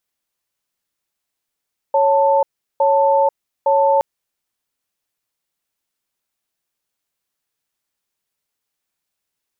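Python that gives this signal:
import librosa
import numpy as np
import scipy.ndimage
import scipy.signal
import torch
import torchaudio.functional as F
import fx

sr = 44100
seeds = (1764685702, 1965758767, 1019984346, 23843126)

y = fx.cadence(sr, length_s=2.07, low_hz=554.0, high_hz=886.0, on_s=0.49, off_s=0.37, level_db=-14.0)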